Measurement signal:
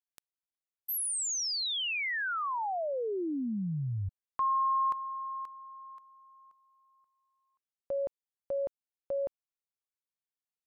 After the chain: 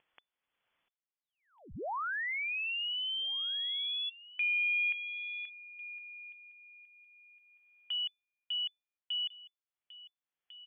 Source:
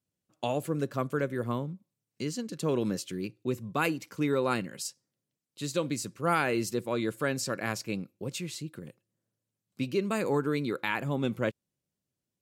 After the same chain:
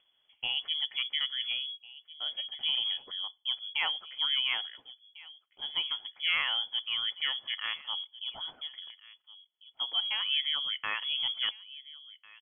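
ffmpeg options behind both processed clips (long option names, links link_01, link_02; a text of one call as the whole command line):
ffmpeg -i in.wav -filter_complex "[0:a]asplit=2[link_01][link_02];[link_02]adelay=1399,volume=-17dB,highshelf=frequency=4000:gain=-31.5[link_03];[link_01][link_03]amix=inputs=2:normalize=0,acompressor=mode=upward:threshold=-49dB:ratio=2.5:attack=6.8:release=575:knee=2.83:detection=peak,lowpass=frequency=3000:width_type=q:width=0.5098,lowpass=frequency=3000:width_type=q:width=0.6013,lowpass=frequency=3000:width_type=q:width=0.9,lowpass=frequency=3000:width_type=q:width=2.563,afreqshift=-3500,volume=-2.5dB" out.wav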